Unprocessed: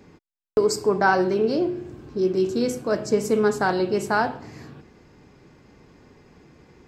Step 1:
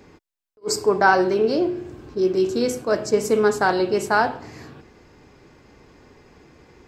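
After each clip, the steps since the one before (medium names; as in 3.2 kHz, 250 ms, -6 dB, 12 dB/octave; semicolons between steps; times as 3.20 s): peaking EQ 170 Hz -6 dB 1.3 oct; attacks held to a fixed rise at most 550 dB/s; trim +3.5 dB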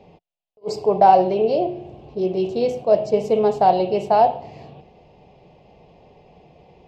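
FFT filter 110 Hz 0 dB, 170 Hz +8 dB, 280 Hz -6 dB, 710 Hz +13 dB, 1.5 kHz -17 dB, 2.8 kHz +5 dB, 8.9 kHz -19 dB; trim -2.5 dB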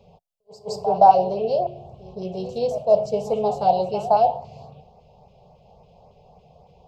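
LFO notch saw up 3.6 Hz 670–3800 Hz; static phaser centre 760 Hz, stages 4; reverse echo 168 ms -14.5 dB; trim +1 dB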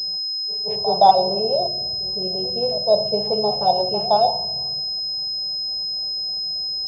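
reverberation RT60 1.3 s, pre-delay 3 ms, DRR 13 dB; class-D stage that switches slowly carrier 5.1 kHz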